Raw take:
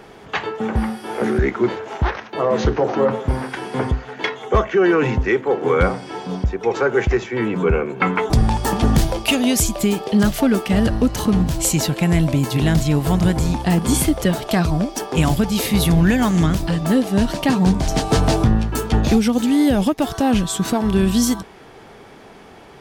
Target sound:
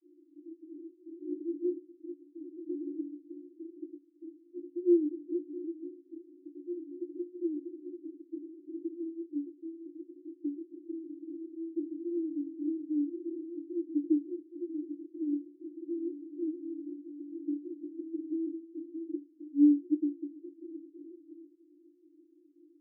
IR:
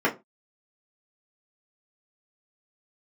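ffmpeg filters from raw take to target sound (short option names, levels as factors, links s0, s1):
-filter_complex "[0:a]asuperpass=centerf=320:order=20:qfactor=4.2,asplit=2[s0][s1];[1:a]atrim=start_sample=2205[s2];[s1][s2]afir=irnorm=-1:irlink=0,volume=0.0316[s3];[s0][s3]amix=inputs=2:normalize=0,volume=0.398"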